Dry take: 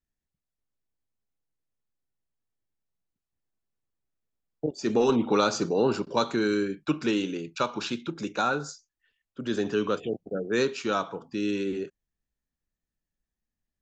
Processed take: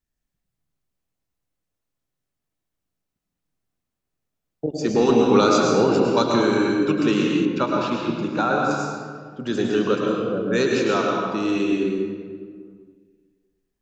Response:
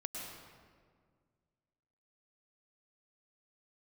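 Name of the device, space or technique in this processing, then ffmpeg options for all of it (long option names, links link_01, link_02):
stairwell: -filter_complex "[1:a]atrim=start_sample=2205[link_01];[0:a][link_01]afir=irnorm=-1:irlink=0,asettb=1/sr,asplit=3[link_02][link_03][link_04];[link_02]atrim=end=7.454[link_05];[link_03]atrim=start=7.45:end=8.71,asetpts=PTS-STARTPTS,afade=type=in:duration=0.004:curve=qsin,afade=type=out:start_time=1.256:duration=0.004:curve=qsin,aemphasis=mode=reproduction:type=75fm[link_06];[link_04]atrim=start=8.706[link_07];[link_05][link_06]acrossfade=duration=0.004:curve1=hsin:curve2=qsin[link_08];[link_08][link_07]acrossfade=duration=0.004:curve1=qsin:curve2=hsin,volume=7dB"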